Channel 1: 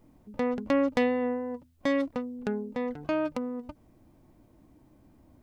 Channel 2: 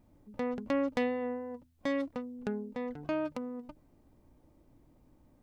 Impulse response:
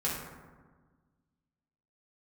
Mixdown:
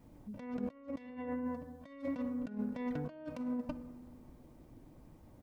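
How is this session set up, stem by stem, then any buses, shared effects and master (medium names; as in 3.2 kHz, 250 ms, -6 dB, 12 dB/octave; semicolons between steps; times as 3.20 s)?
-9.5 dB, 0.00 s, send -10 dB, none
+0.5 dB, 2.4 ms, polarity flipped, no send, none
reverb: on, RT60 1.4 s, pre-delay 3 ms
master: harmonic-percussive split harmonic -3 dB; compressor with a negative ratio -39 dBFS, ratio -0.5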